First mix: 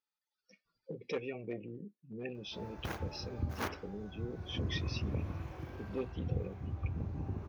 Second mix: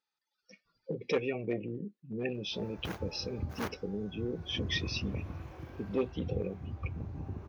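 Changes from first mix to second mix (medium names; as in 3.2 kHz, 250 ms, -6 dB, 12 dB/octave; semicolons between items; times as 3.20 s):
speech +7.0 dB; background: send -8.0 dB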